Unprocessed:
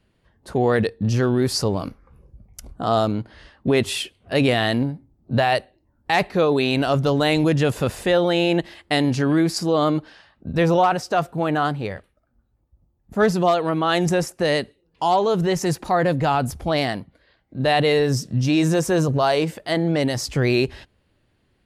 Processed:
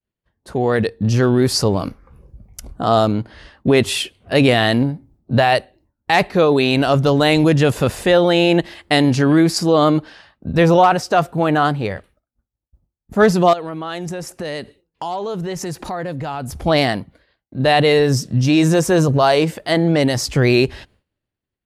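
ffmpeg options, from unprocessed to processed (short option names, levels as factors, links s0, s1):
-filter_complex "[0:a]asettb=1/sr,asplit=3[s0][s1][s2];[s0]atrim=end=13.534[s3];[s1]atrim=start=13.53:end=16.64,asetpts=PTS-STARTPTS,afade=t=in:d=0.004:c=qsin,afade=t=out:st=3.106:d=0.004:c=qsin,acompressor=threshold=0.0224:ratio=3:attack=3.2:release=140:knee=1:detection=peak[s4];[s2]atrim=start=16.636[s5];[s3][s4]acrossfade=d=0.004:c1=hsin:c2=qsin[s6];[s6][s5]acrossfade=d=0.004:c1=qsin:c2=hsin,agate=range=0.0224:threshold=0.00282:ratio=3:detection=peak,dynaudnorm=f=620:g=3:m=2.24"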